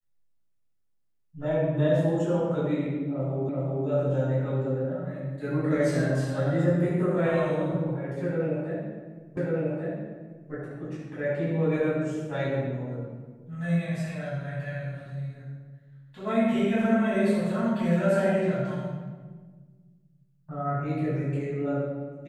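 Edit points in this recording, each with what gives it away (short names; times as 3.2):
3.49 repeat of the last 0.38 s
9.37 repeat of the last 1.14 s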